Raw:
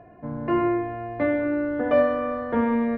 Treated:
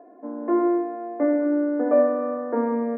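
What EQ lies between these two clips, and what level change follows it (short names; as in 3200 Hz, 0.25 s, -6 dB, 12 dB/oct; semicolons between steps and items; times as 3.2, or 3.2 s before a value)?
elliptic high-pass 260 Hz, stop band 50 dB; Bessel low-pass 1100 Hz, order 8; low shelf 470 Hz +5.5 dB; 0.0 dB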